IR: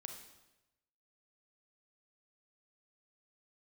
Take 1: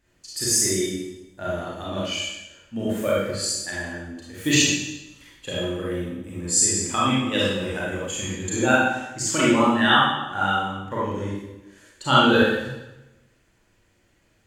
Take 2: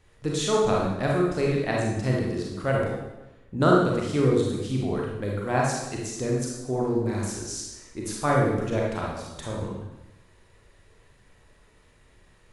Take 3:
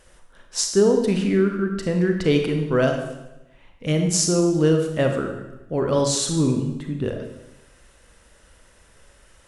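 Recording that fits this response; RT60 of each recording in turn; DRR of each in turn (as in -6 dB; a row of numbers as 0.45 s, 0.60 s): 3; 1.0 s, 1.0 s, 1.0 s; -7.5 dB, -3.0 dB, 3.5 dB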